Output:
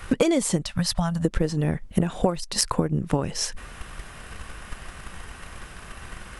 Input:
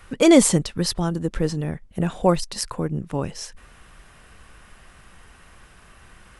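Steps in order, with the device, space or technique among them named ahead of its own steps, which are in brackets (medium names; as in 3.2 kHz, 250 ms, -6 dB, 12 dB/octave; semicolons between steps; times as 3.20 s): drum-bus smash (transient shaper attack +8 dB, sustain +1 dB; compression 16:1, threshold -25 dBFS, peak gain reduction 20 dB; saturation -9.5 dBFS, distortion -30 dB); 0.63–1.25 s: FFT filter 190 Hz 0 dB, 410 Hz -30 dB, 580 Hz +1 dB; trim +7.5 dB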